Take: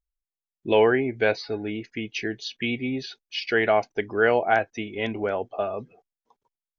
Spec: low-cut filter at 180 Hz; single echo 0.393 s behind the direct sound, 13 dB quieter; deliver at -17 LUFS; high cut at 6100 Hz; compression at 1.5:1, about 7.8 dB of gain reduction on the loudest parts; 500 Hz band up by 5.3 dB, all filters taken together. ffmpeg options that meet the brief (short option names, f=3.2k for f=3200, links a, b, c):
-af "highpass=180,lowpass=6.1k,equalizer=f=500:t=o:g=6.5,acompressor=threshold=-32dB:ratio=1.5,aecho=1:1:393:0.224,volume=10.5dB"